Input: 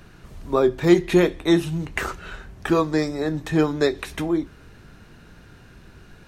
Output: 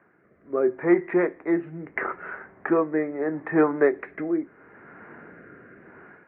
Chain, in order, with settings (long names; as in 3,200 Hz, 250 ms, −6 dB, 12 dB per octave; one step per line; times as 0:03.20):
automatic gain control gain up to 13.5 dB
Chebyshev low-pass filter 2,100 Hz, order 5
rotating-speaker cabinet horn 0.75 Hz
high-pass filter 340 Hz 12 dB per octave
level −3 dB